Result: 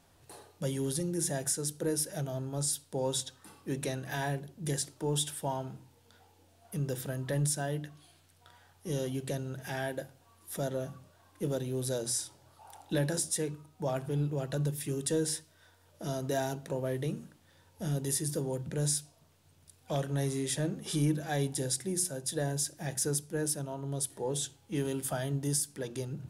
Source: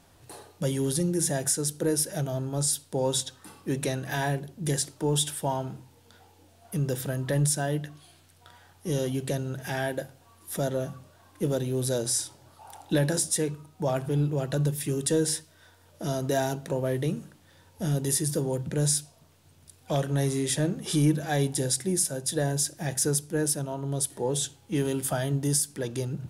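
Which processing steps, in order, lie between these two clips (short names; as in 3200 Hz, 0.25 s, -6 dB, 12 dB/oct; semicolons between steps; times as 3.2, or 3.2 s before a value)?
notches 60/120/180/240/300/360 Hz; gain -5.5 dB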